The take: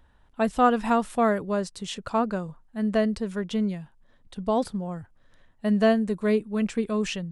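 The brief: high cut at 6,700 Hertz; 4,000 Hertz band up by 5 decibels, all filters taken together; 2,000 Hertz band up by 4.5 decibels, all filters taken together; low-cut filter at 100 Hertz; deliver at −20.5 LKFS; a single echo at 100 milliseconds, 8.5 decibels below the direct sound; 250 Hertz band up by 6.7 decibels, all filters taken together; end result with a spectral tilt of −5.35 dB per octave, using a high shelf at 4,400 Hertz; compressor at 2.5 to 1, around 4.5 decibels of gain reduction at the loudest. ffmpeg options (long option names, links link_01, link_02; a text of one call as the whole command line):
ffmpeg -i in.wav -af "highpass=100,lowpass=6700,equalizer=frequency=250:width_type=o:gain=8,equalizer=frequency=2000:width_type=o:gain=4.5,equalizer=frequency=4000:width_type=o:gain=3.5,highshelf=frequency=4400:gain=3.5,acompressor=threshold=-18dB:ratio=2.5,aecho=1:1:100:0.376,volume=3dB" out.wav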